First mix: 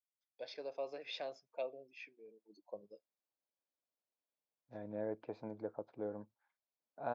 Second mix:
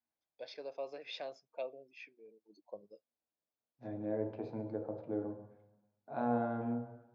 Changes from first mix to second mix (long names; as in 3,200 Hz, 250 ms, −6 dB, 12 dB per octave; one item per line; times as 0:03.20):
second voice: entry −0.90 s
reverb: on, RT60 1.0 s